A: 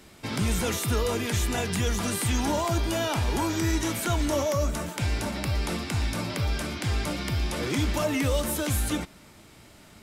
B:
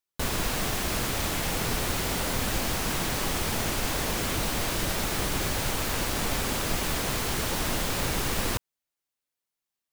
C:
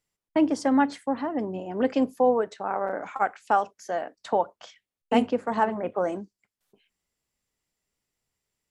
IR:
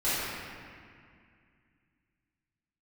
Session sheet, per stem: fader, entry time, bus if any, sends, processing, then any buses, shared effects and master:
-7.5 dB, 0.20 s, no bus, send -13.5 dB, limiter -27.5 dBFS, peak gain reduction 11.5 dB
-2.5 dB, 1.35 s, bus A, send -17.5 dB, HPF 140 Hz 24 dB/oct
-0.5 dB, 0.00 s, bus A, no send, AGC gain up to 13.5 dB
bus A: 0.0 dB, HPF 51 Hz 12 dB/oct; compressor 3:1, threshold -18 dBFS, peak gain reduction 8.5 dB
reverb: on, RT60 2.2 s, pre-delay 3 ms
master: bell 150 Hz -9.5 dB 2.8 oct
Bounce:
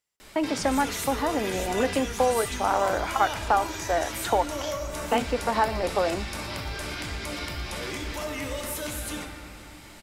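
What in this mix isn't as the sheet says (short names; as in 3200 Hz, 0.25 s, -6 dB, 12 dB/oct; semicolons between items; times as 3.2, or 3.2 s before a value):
stem A -7.5 dB -> +3.5 dB; stem B: muted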